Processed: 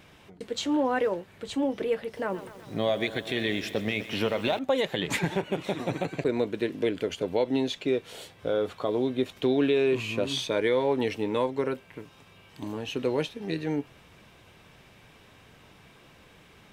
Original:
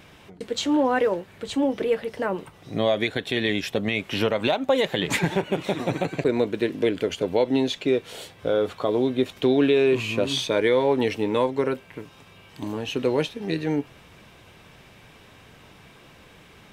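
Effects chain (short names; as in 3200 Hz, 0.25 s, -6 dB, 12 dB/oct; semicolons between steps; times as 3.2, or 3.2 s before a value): 2–4.59 lo-fi delay 0.125 s, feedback 80%, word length 7-bit, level -14 dB; gain -4.5 dB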